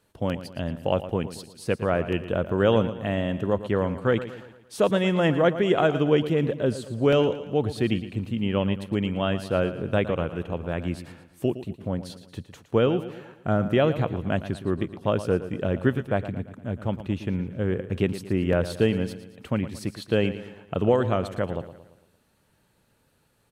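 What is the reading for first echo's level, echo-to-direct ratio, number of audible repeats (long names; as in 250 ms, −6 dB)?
−13.0 dB, −12.0 dB, 4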